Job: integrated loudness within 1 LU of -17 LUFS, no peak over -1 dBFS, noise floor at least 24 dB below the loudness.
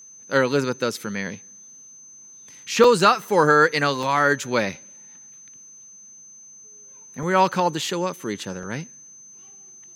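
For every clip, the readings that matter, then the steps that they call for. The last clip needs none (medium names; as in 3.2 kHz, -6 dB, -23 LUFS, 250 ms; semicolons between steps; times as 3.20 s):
dropouts 5; longest dropout 2.7 ms; steady tone 6.2 kHz; tone level -43 dBFS; loudness -21.0 LUFS; peak level -3.5 dBFS; loudness target -17.0 LUFS
-> interpolate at 2.84/4.03/7.23/7.82/8.63 s, 2.7 ms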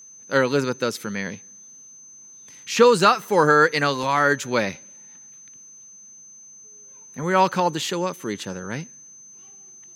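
dropouts 0; steady tone 6.2 kHz; tone level -43 dBFS
-> band-stop 6.2 kHz, Q 30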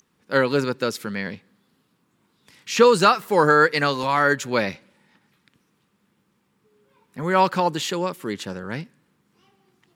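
steady tone not found; loudness -21.0 LUFS; peak level -3.5 dBFS; loudness target -17.0 LUFS
-> trim +4 dB; peak limiter -1 dBFS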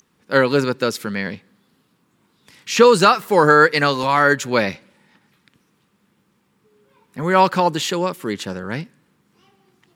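loudness -17.0 LUFS; peak level -1.0 dBFS; noise floor -65 dBFS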